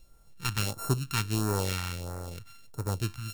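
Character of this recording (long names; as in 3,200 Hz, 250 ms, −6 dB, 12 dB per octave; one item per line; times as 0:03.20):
a buzz of ramps at a fixed pitch in blocks of 32 samples
phaser sweep stages 2, 1.5 Hz, lowest notch 480–2,900 Hz
a quantiser's noise floor 12 bits, dither none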